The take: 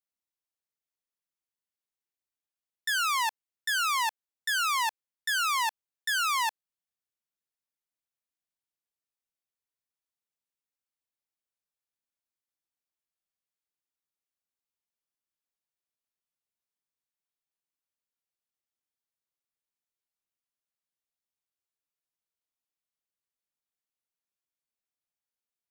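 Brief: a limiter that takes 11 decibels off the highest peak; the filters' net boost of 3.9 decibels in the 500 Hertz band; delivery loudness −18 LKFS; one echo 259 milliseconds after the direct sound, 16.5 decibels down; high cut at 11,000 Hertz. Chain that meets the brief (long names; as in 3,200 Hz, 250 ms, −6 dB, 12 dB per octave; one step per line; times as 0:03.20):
low-pass filter 11,000 Hz
parametric band 500 Hz +6 dB
brickwall limiter −31 dBFS
single-tap delay 259 ms −16.5 dB
level +19.5 dB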